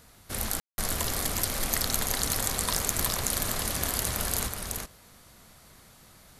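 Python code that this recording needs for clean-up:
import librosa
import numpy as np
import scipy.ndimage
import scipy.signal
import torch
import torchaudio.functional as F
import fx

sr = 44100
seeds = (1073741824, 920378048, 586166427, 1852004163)

y = fx.fix_declip(x, sr, threshold_db=-9.0)
y = fx.fix_ambience(y, sr, seeds[0], print_start_s=5.76, print_end_s=6.26, start_s=0.6, end_s=0.78)
y = fx.fix_echo_inverse(y, sr, delay_ms=375, level_db=-3.5)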